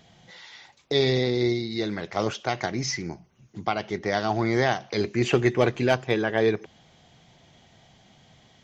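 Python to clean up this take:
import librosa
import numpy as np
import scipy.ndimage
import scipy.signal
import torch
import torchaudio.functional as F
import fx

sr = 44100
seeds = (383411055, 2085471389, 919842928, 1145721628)

y = fx.fix_declip(x, sr, threshold_db=-9.0)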